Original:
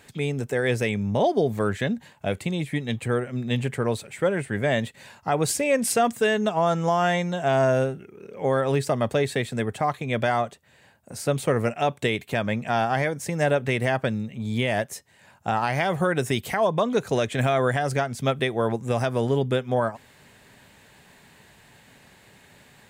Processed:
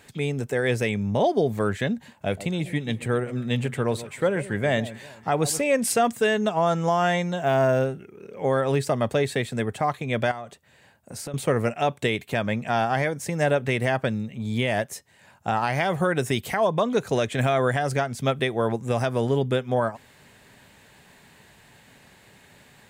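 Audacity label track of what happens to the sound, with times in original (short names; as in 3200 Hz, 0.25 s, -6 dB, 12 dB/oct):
1.950000	5.620000	echo with dull and thin repeats by turns 0.131 s, split 1000 Hz, feedback 55%, level -14 dB
7.400000	7.860000	decimation joined by straight lines rate divided by 3×
10.310000	11.340000	compressor 8:1, threshold -31 dBFS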